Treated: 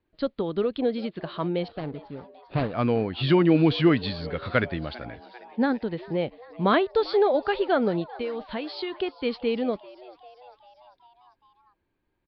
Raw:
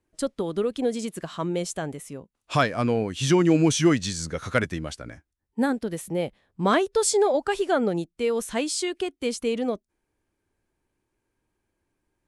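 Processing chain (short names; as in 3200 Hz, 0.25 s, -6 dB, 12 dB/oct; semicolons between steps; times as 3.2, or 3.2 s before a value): 1.68–2.74 median filter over 41 samples; steep low-pass 4600 Hz 96 dB/oct; 8.15–8.99 compressor, threshold -28 dBFS, peak gain reduction 8 dB; frequency-shifting echo 0.396 s, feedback 63%, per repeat +120 Hz, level -20.5 dB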